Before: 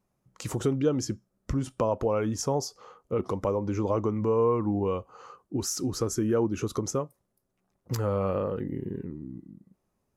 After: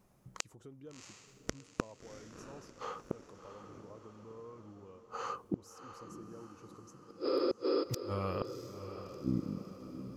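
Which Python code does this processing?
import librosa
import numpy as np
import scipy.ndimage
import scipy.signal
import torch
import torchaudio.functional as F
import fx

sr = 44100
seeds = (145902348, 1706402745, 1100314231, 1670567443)

y = fx.tone_stack(x, sr, knobs='5-5-5', at=(7.02, 8.42))
y = fx.spec_repair(y, sr, seeds[0], start_s=6.97, length_s=0.84, low_hz=250.0, high_hz=5200.0, source='before')
y = fx.gate_flip(y, sr, shuts_db=-29.0, range_db=-35)
y = fx.echo_diffused(y, sr, ms=690, feedback_pct=53, wet_db=-10.5)
y = F.gain(torch.from_numpy(y), 8.5).numpy()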